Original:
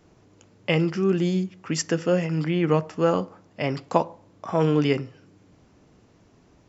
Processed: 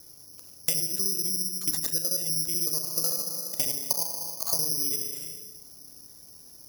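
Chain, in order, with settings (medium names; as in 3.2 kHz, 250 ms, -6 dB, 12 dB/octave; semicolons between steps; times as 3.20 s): time reversed locally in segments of 62 ms; on a send at -5.5 dB: reverberation RT60 1.1 s, pre-delay 31 ms; on the sum: careless resampling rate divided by 8×, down none, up zero stuff; spectral gate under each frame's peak -25 dB strong; in parallel at -10.5 dB: short-mantissa float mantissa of 8-bit; on the sum: compression 6:1, threshold -18 dBFS, peak gain reduction 16 dB; treble shelf 4.5 kHz +5.5 dB; de-hum 225.8 Hz, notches 8; trim -8.5 dB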